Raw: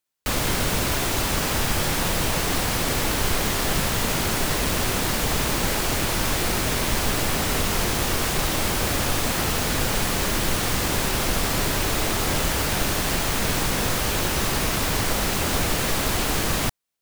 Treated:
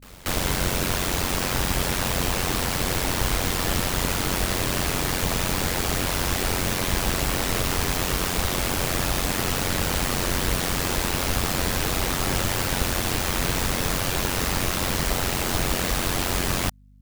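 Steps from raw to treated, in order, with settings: reverse echo 0.236 s -21 dB; ring modulator 45 Hz; hum 50 Hz, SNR 28 dB; gain +1.5 dB

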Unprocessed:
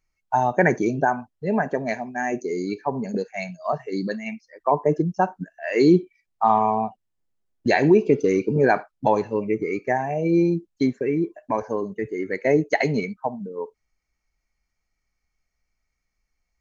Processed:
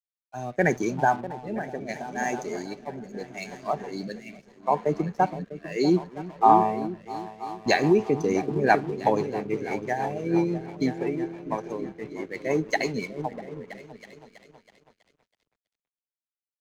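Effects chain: high shelf 3100 Hz +9 dB; repeats that get brighter 0.324 s, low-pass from 200 Hz, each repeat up 2 oct, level -6 dB; dynamic EQ 800 Hz, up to +6 dB, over -37 dBFS, Q 5.6; crossover distortion -40 dBFS; rotary speaker horn 0.75 Hz, later 6 Hz, at 6.84; three-band expander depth 40%; gain -4 dB

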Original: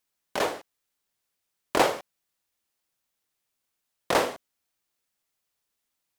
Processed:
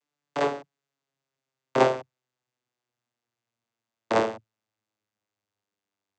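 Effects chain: vocoder on a gliding note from D3, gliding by -7 st; low shelf 250 Hz -7.5 dB; gain +4 dB

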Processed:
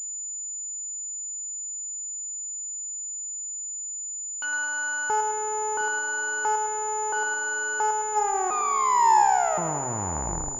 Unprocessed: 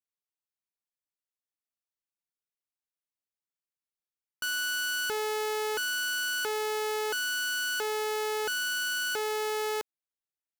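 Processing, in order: tape stop at the end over 2.47 s; de-hum 135.1 Hz, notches 6; power-law curve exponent 1.4; treble ducked by the level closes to 1500 Hz, closed at -32 dBFS; limiter -35.5 dBFS, peak gain reduction 11.5 dB; bell 880 Hz +15 dB 0.65 oct; split-band echo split 430 Hz, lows 0.711 s, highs 0.107 s, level -6 dB; pulse-width modulation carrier 7000 Hz; gain +8.5 dB

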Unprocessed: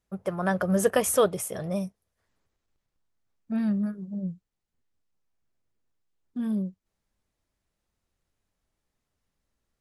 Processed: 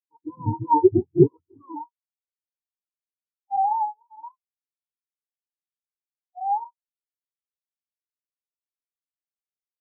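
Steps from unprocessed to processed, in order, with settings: spectrum mirrored in octaves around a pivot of 420 Hz; spectral expander 2.5:1; gain +8.5 dB

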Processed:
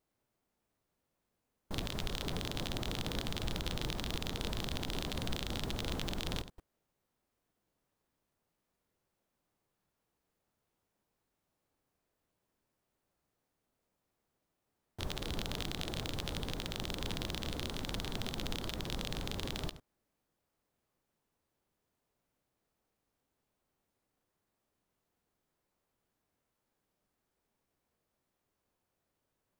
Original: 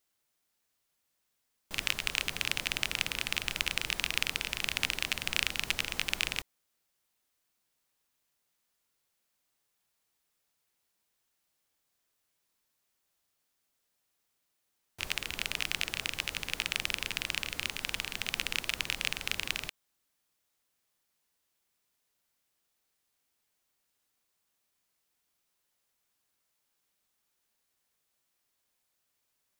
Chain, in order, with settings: reverse delay 0.1 s, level -13.5 dB; limiter -13 dBFS, peak gain reduction 7.5 dB; short-mantissa float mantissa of 2-bit; tilt shelf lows +9.5 dB; formant shift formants +5 st

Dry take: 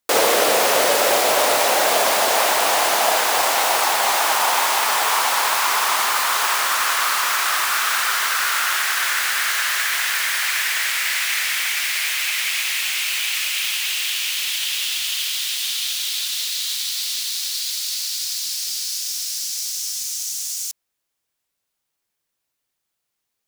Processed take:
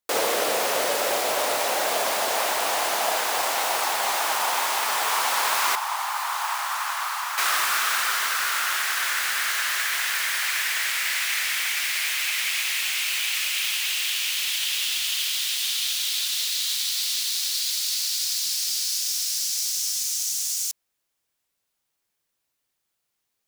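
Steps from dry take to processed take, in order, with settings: 5.75–7.38 ladder high-pass 730 Hz, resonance 55%; vocal rider within 4 dB 2 s; gain -4 dB

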